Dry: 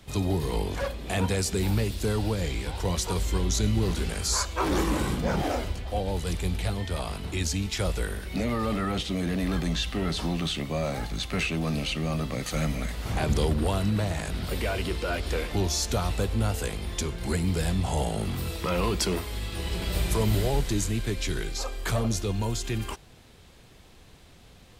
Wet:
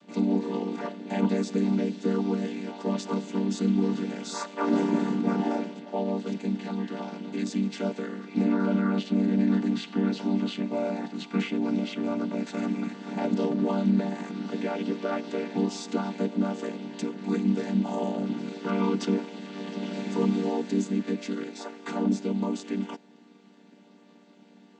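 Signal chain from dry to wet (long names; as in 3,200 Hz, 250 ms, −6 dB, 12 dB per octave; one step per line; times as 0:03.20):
channel vocoder with a chord as carrier minor triad, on G3
level +2.5 dB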